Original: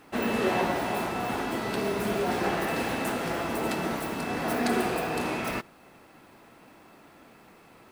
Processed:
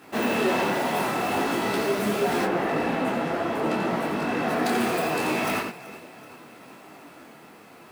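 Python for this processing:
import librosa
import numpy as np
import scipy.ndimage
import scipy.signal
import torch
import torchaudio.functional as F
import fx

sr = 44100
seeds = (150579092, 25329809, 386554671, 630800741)

y = x + 10.0 ** (-7.0 / 20.0) * np.pad(x, (int(88 * sr / 1000.0), 0))[:len(x)]
y = fx.quant_float(y, sr, bits=2)
y = fx.lowpass(y, sr, hz=fx.line((2.44, 1200.0), (4.64, 3300.0)), slope=6, at=(2.44, 4.64), fade=0.02)
y = fx.echo_feedback(y, sr, ms=380, feedback_pct=58, wet_db=-20)
y = 10.0 ** (-23.0 / 20.0) * np.tanh(y / 10.0 ** (-23.0 / 20.0))
y = scipy.signal.sosfilt(scipy.signal.butter(2, 120.0, 'highpass', fs=sr, output='sos'), y)
y = fx.detune_double(y, sr, cents=25)
y = y * 10.0 ** (9.0 / 20.0)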